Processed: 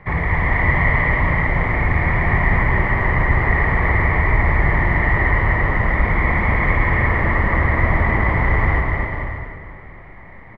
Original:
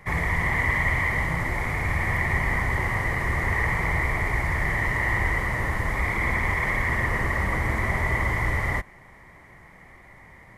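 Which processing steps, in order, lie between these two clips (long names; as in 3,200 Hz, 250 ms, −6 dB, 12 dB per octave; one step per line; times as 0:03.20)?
high-frequency loss of the air 410 metres
bouncing-ball delay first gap 250 ms, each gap 0.75×, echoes 5
on a send at −7 dB: convolution reverb RT60 2.3 s, pre-delay 100 ms
on the sum: level +6.5 dB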